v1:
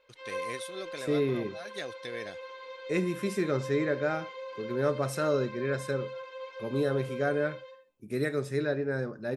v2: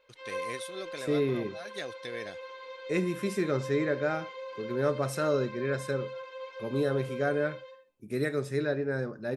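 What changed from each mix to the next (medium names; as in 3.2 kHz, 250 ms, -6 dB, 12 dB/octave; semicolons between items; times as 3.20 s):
no change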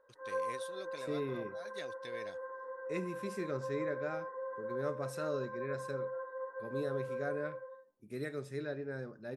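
first voice -7.5 dB; second voice -10.0 dB; background: add brick-wall FIR low-pass 2 kHz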